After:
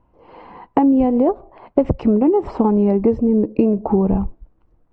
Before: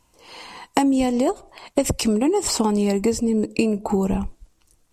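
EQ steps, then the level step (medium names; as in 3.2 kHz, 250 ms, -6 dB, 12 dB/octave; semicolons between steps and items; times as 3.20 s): low-pass 1 kHz 12 dB/octave; distance through air 120 m; +5.0 dB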